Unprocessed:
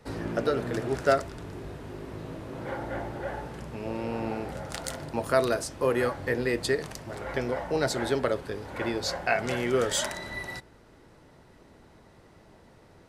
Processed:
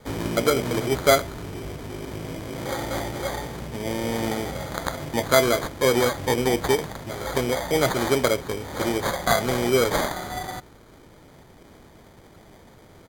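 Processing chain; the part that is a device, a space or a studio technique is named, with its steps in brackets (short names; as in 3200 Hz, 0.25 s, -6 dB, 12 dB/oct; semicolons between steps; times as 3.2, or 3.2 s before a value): crushed at another speed (playback speed 1.25×; sample-and-hold 13×; playback speed 0.8×); gain +5.5 dB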